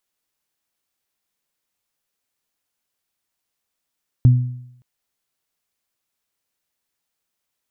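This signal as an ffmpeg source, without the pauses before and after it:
-f lavfi -i "aevalsrc='0.531*pow(10,-3*t/0.74)*sin(2*PI*124*t)+0.0944*pow(10,-3*t/0.63)*sin(2*PI*248*t)':d=0.57:s=44100"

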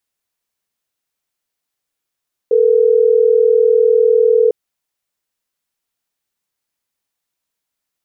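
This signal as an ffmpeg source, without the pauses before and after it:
-f lavfi -i "aevalsrc='0.282*(sin(2*PI*440*t)+sin(2*PI*480*t))*clip(min(mod(t,6),2-mod(t,6))/0.005,0,1)':d=3.12:s=44100"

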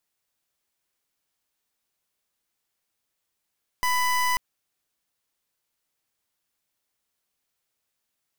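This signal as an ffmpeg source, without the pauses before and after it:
-f lavfi -i "aevalsrc='0.0708*(2*lt(mod(996*t,1),0.27)-1)':d=0.54:s=44100"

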